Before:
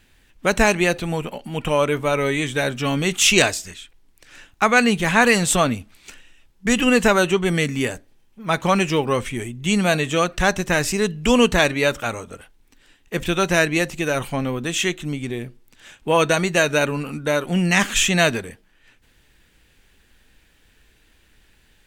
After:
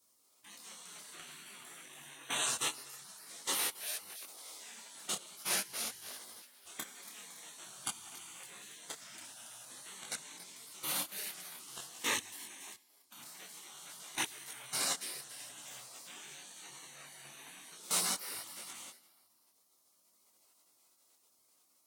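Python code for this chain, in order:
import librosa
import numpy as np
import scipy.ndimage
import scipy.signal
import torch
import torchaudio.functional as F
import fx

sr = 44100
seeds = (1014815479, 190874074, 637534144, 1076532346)

y = fx.transient(x, sr, attack_db=7, sustain_db=1)
y = fx.over_compress(y, sr, threshold_db=-23.0, ratio=-1.0)
y = scipy.signal.sosfilt(scipy.signal.butter(2, 690.0, 'highpass', fs=sr, output='sos'), y)
y = fx.high_shelf(y, sr, hz=7100.0, db=2.5)
y = fx.rev_plate(y, sr, seeds[0], rt60_s=1.5, hf_ratio=0.8, predelay_ms=0, drr_db=-4.5)
y = fx.level_steps(y, sr, step_db=20)
y = fx.echo_wet_highpass(y, sr, ms=281, feedback_pct=37, hz=5100.0, wet_db=-5)
y = fx.spec_gate(y, sr, threshold_db=-15, keep='weak')
y = fx.peak_eq(y, sr, hz=9400.0, db=3.5, octaves=0.31)
y = fx.detune_double(y, sr, cents=17)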